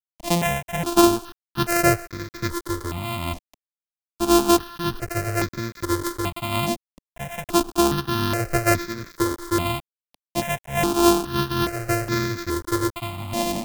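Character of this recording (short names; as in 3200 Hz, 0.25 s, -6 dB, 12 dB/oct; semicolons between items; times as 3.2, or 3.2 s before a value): a buzz of ramps at a fixed pitch in blocks of 128 samples; tremolo triangle 1.2 Hz, depth 75%; a quantiser's noise floor 8-bit, dither none; notches that jump at a steady rate 2.4 Hz 400–2900 Hz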